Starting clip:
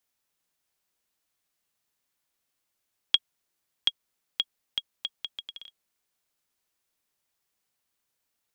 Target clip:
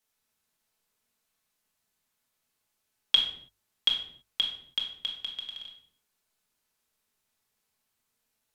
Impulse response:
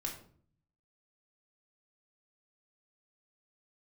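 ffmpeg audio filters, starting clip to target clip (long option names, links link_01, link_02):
-filter_complex "[0:a]bandreject=frequency=50:width_type=h:width=6,bandreject=frequency=100:width_type=h:width=6[link_01];[1:a]atrim=start_sample=2205,afade=type=out:start_time=0.29:duration=0.01,atrim=end_sample=13230,asetrate=31752,aresample=44100[link_02];[link_01][link_02]afir=irnorm=-1:irlink=0"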